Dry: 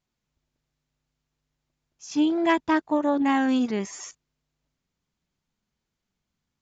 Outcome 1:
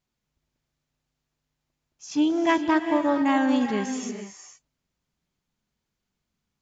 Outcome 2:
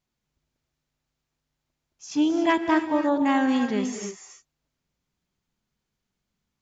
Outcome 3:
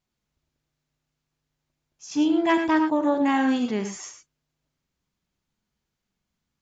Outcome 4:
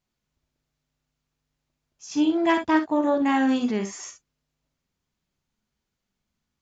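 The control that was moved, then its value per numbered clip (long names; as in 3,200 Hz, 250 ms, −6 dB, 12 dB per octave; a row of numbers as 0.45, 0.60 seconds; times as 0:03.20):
reverb whose tail is shaped and stops, gate: 490, 320, 130, 80 milliseconds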